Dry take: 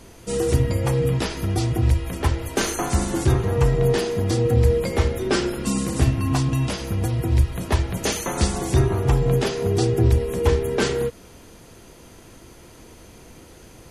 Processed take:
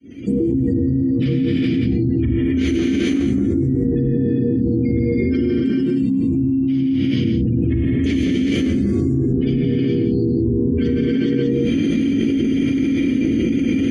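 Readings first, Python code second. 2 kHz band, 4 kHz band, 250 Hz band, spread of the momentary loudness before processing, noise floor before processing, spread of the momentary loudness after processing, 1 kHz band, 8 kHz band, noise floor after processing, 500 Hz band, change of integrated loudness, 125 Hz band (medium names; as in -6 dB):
-1.0 dB, -2.0 dB, +12.0 dB, 5 LU, -46 dBFS, 0 LU, under -15 dB, under -10 dB, -19 dBFS, 0.0 dB, +3.5 dB, 0.0 dB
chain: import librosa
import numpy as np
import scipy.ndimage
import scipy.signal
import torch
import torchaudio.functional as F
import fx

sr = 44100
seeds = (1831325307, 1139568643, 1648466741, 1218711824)

y = fx.fade_in_head(x, sr, length_s=0.69)
y = scipy.signal.sosfilt(scipy.signal.butter(4, 44.0, 'highpass', fs=sr, output='sos'), y)
y = fx.spec_gate(y, sr, threshold_db=-20, keep='strong')
y = fx.low_shelf(y, sr, hz=220.0, db=11.5)
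y = fx.rider(y, sr, range_db=10, speed_s=0.5)
y = fx.vowel_filter(y, sr, vowel='i')
y = fx.rotary_switch(y, sr, hz=7.0, then_hz=1.0, switch_at_s=3.02)
y = y + 10.0 ** (-8.0 / 20.0) * np.pad(y, (int(173 * sr / 1000.0), 0))[:len(y)]
y = fx.rev_gated(y, sr, seeds[0], gate_ms=450, shape='rising', drr_db=-7.0)
y = fx.env_flatten(y, sr, amount_pct=100)
y = y * 10.0 ** (-5.5 / 20.0)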